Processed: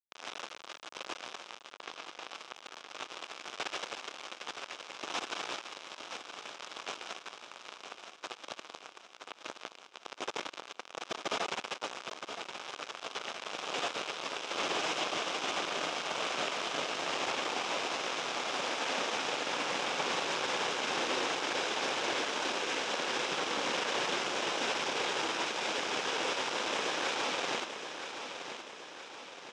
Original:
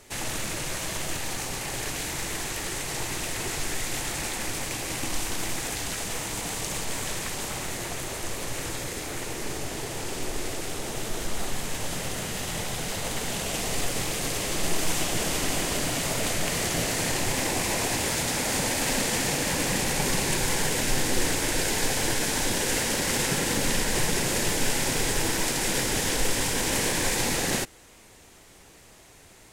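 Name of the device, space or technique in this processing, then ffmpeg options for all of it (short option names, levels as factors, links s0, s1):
hand-held game console: -filter_complex "[0:a]acrusher=bits=3:mix=0:aa=0.000001,highpass=430,equalizer=f=1200:t=q:w=4:g=3,equalizer=f=1900:t=q:w=4:g=-7,equalizer=f=4400:t=q:w=4:g=-8,lowpass=f=4900:w=0.5412,lowpass=f=4900:w=1.3066,asettb=1/sr,asplit=3[s0][s1][s2];[s0]atrim=end=1.724[s3];[s1]atrim=start=1.72:end=2.25,asetpts=PTS-STARTPTS,afade=t=in:d=0.004:c=qsin,afade=t=out:st=0.526:d=0.004:c=qsin,lowpass=6200[s4];[s2]atrim=start=2.246[s5];[s3][s4]acrossfade=d=0.004:c1=hsin:c2=qsin[s6];[s6][s5]acrossfade=d=0.004:c1=qsin:c2=hsin,aecho=1:1:970|1940|2910|3880|4850|5820:0.355|0.185|0.0959|0.0499|0.0259|0.0135,volume=0.668"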